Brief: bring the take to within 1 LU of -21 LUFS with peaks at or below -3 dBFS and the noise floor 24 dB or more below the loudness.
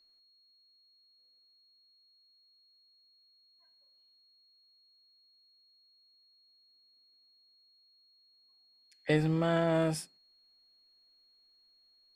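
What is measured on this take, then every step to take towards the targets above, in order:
steady tone 4.3 kHz; tone level -64 dBFS; loudness -30.5 LUFS; peak level -14.5 dBFS; loudness target -21.0 LUFS
-> band-stop 4.3 kHz, Q 30; trim +9.5 dB

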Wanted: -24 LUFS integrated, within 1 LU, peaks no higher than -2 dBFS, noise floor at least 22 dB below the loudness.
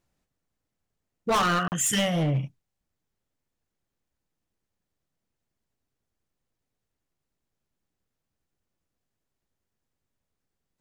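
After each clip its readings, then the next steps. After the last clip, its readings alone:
clipped samples 0.9%; clipping level -20.5 dBFS; dropouts 1; longest dropout 39 ms; loudness -25.0 LUFS; peak level -20.5 dBFS; loudness target -24.0 LUFS
-> clip repair -20.5 dBFS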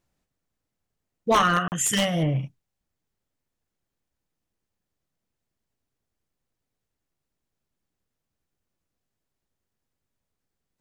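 clipped samples 0.0%; dropouts 1; longest dropout 39 ms
-> interpolate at 1.68 s, 39 ms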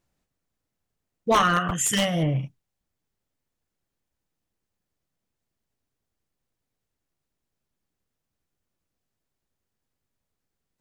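dropouts 0; loudness -23.0 LUFS; peak level -11.5 dBFS; loudness target -24.0 LUFS
-> trim -1 dB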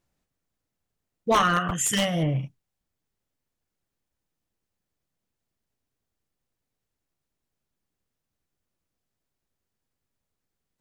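loudness -24.0 LUFS; peak level -12.5 dBFS; noise floor -84 dBFS

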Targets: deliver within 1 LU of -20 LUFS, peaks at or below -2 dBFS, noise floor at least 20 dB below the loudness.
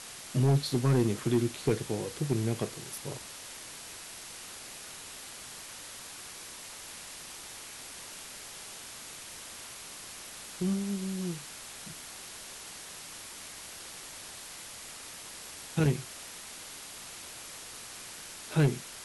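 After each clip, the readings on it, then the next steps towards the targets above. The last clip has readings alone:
clipped samples 0.3%; clipping level -19.0 dBFS; noise floor -46 dBFS; noise floor target -56 dBFS; loudness -35.5 LUFS; peak level -19.0 dBFS; loudness target -20.0 LUFS
-> clip repair -19 dBFS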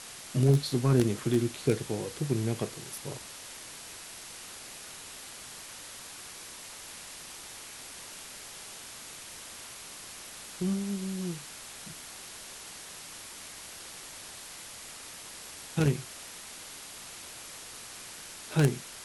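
clipped samples 0.0%; noise floor -46 dBFS; noise floor target -55 dBFS
-> noise reduction 9 dB, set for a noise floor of -46 dBFS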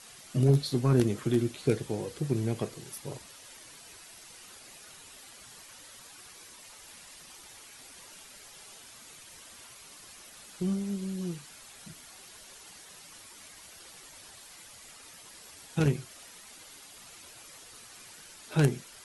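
noise floor -51 dBFS; loudness -30.0 LUFS; peak level -10.0 dBFS; loudness target -20.0 LUFS
-> trim +10 dB; peak limiter -2 dBFS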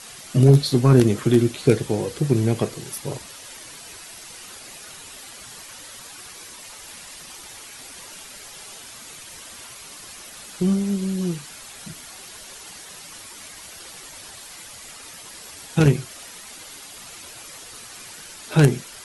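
loudness -20.5 LUFS; peak level -2.0 dBFS; noise floor -41 dBFS

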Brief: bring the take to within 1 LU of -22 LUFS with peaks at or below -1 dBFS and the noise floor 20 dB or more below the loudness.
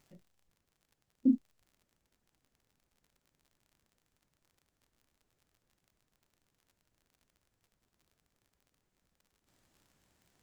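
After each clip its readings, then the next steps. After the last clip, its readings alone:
tick rate 39 per s; loudness -31.5 LUFS; peak level -16.5 dBFS; loudness target -22.0 LUFS
-> de-click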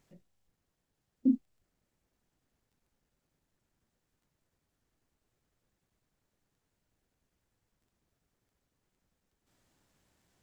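tick rate 0.19 per s; loudness -31.5 LUFS; peak level -16.5 dBFS; loudness target -22.0 LUFS
-> trim +9.5 dB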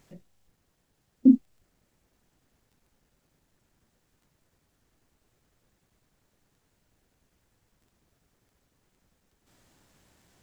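loudness -22.0 LUFS; peak level -7.0 dBFS; noise floor -74 dBFS

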